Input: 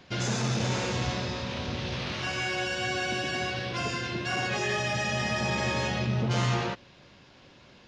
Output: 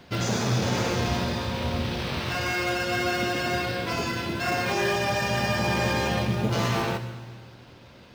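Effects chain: wide varispeed 0.967×; in parallel at -8 dB: sample-and-hold 13×; on the sum: reverberation RT60 2.0 s, pre-delay 6 ms, DRR 8.5 dB; trim +1.5 dB

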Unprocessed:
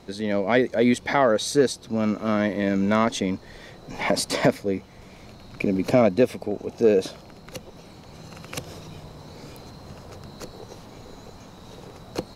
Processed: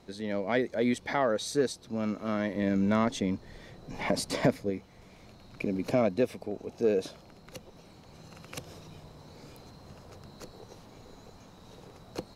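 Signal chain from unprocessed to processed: 2.55–4.70 s: bass shelf 320 Hz +6 dB; trim -8 dB

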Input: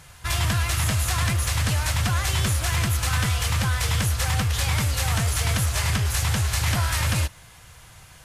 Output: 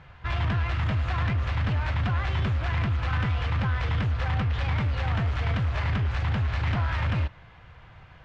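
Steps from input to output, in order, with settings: Bessel low-pass 2.1 kHz, order 4; saturation -19.5 dBFS, distortion -18 dB

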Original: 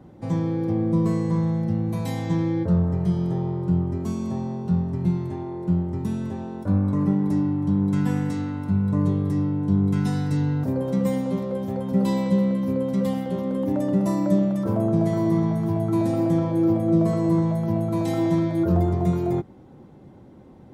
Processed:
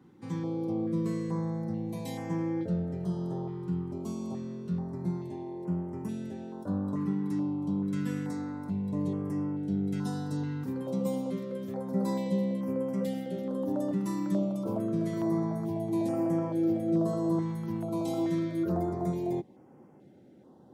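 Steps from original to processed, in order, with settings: Bessel high-pass 220 Hz, order 2; step-sequenced notch 2.3 Hz 630–3800 Hz; trim -5 dB

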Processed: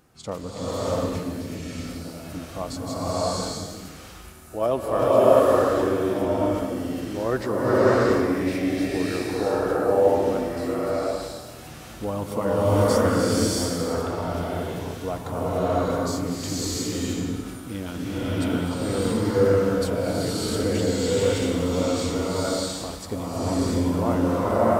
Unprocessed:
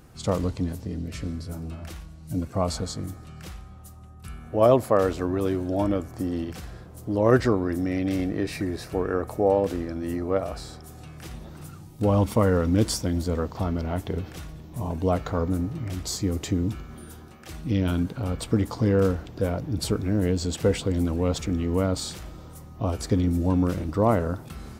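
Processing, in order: bass shelf 150 Hz -11 dB; swelling reverb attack 660 ms, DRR -9.5 dB; trim -5 dB

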